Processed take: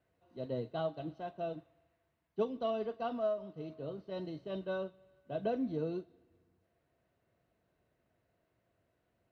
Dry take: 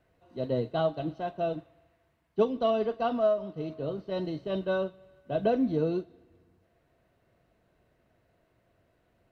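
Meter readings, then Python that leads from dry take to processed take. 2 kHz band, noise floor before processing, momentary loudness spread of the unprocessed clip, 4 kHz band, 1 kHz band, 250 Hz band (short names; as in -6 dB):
-8.5 dB, -71 dBFS, 10 LU, -8.5 dB, -8.5 dB, -8.5 dB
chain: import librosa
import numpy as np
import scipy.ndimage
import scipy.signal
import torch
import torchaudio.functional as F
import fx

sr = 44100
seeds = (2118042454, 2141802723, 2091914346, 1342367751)

y = scipy.signal.sosfilt(scipy.signal.butter(2, 52.0, 'highpass', fs=sr, output='sos'), x)
y = y * 10.0 ** (-8.5 / 20.0)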